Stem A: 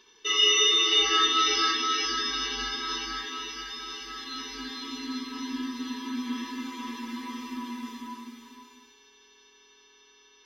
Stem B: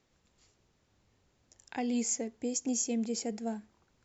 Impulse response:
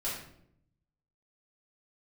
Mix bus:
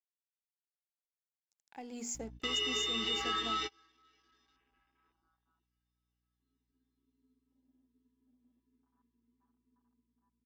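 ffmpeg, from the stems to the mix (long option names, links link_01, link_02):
-filter_complex "[0:a]aemphasis=mode=reproduction:type=cd,afwtdn=0.0224,aeval=exprs='val(0)+0.00631*(sin(2*PI*60*n/s)+sin(2*PI*2*60*n/s)/2+sin(2*PI*3*60*n/s)/3+sin(2*PI*4*60*n/s)/4+sin(2*PI*5*60*n/s)/5)':channel_layout=same,adelay=2150,volume=-5.5dB[link_01];[1:a]bandreject=frequency=60:width_type=h:width=6,bandreject=frequency=120:width_type=h:width=6,bandreject=frequency=180:width_type=h:width=6,bandreject=frequency=240:width_type=h:width=6,bandreject=frequency=300:width_type=h:width=6,bandreject=frequency=360:width_type=h:width=6,bandreject=frequency=420:width_type=h:width=6,aeval=exprs='sgn(val(0))*max(abs(val(0))-0.00282,0)':channel_layout=same,volume=-5dB,afade=type=in:start_time=1.7:duration=0.55:silence=0.316228,asplit=2[link_02][link_03];[link_03]apad=whole_len=555743[link_04];[link_01][link_04]sidechaingate=range=-35dB:threshold=-55dB:ratio=16:detection=peak[link_05];[link_05][link_02]amix=inputs=2:normalize=0,equalizer=frequency=820:width=7:gain=7,acompressor=threshold=-33dB:ratio=2.5"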